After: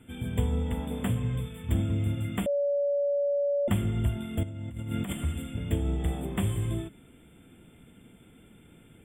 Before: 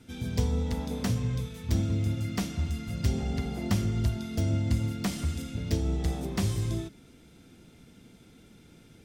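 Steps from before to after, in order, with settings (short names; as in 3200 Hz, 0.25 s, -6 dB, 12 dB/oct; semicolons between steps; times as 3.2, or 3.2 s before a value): FFT band-reject 3600–7200 Hz; 2.46–3.68 bleep 570 Hz -23.5 dBFS; 4.43–5.13 negative-ratio compressor -35 dBFS, ratio -1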